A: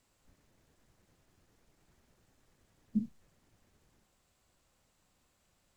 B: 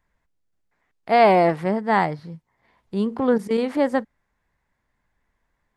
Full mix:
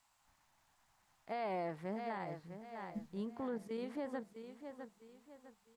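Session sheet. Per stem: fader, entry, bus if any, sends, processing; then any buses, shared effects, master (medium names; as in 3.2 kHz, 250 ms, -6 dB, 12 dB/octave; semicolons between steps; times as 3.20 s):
-1.0 dB, 0.00 s, no send, no echo send, resonant low shelf 620 Hz -10.5 dB, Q 3
-18.5 dB, 0.20 s, no send, echo send -11 dB, none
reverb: none
echo: feedback delay 654 ms, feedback 35%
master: peak limiter -32.5 dBFS, peak gain reduction 9.5 dB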